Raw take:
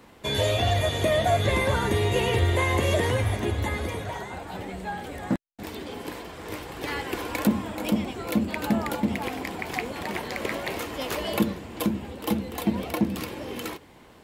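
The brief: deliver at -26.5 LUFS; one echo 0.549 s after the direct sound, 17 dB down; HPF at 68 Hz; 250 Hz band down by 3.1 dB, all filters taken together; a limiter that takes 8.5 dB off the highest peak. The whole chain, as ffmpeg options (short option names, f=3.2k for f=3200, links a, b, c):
-af "highpass=68,equalizer=f=250:t=o:g=-4,alimiter=limit=-19.5dB:level=0:latency=1,aecho=1:1:549:0.141,volume=5dB"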